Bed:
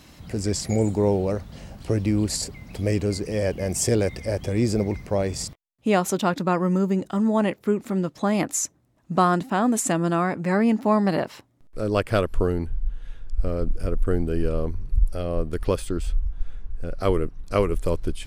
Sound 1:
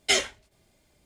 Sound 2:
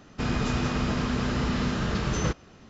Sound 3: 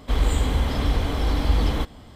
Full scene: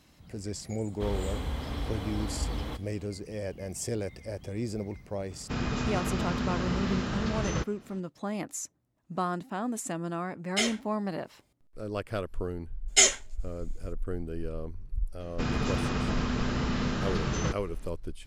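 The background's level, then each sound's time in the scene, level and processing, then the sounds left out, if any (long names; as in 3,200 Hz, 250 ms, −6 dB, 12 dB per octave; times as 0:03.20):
bed −11.5 dB
0:00.92: mix in 3 −10.5 dB + high-pass filter 49 Hz
0:05.31: mix in 2 −4 dB
0:10.48: mix in 1 −6 dB
0:12.88: mix in 1 −1.5 dB + parametric band 7,000 Hz +13 dB 0.44 octaves
0:15.20: mix in 2 −3 dB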